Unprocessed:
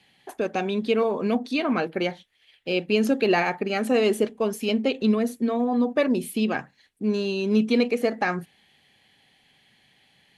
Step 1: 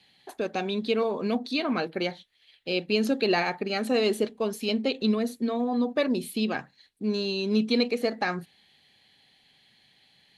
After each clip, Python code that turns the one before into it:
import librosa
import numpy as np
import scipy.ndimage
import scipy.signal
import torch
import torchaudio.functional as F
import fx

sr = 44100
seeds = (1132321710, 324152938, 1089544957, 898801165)

y = fx.peak_eq(x, sr, hz=4100.0, db=9.5, octaves=0.42)
y = F.gain(torch.from_numpy(y), -3.5).numpy()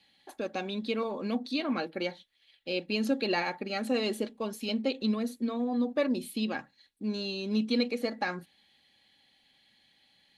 y = x + 0.4 * np.pad(x, (int(3.6 * sr / 1000.0), 0))[:len(x)]
y = F.gain(torch.from_numpy(y), -5.0).numpy()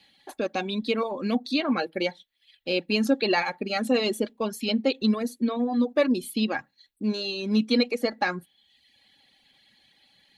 y = fx.dereverb_blind(x, sr, rt60_s=0.82)
y = F.gain(torch.from_numpy(y), 6.5).numpy()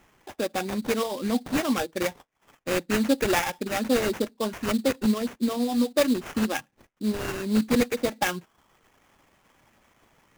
y = fx.sample_hold(x, sr, seeds[0], rate_hz=4300.0, jitter_pct=20)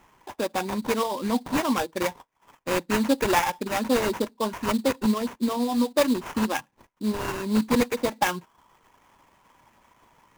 y = fx.peak_eq(x, sr, hz=970.0, db=11.5, octaves=0.3)